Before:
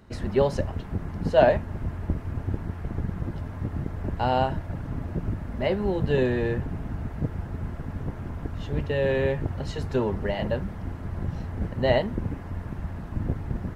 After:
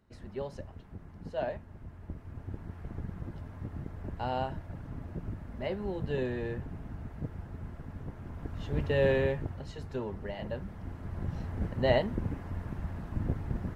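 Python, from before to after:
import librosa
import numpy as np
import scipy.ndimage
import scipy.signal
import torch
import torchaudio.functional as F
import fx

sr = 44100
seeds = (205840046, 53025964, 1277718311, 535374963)

y = fx.gain(x, sr, db=fx.line((1.87, -16.0), (2.82, -9.5), (8.19, -9.5), (9.04, -1.0), (9.66, -11.0), (10.36, -11.0), (11.46, -4.0)))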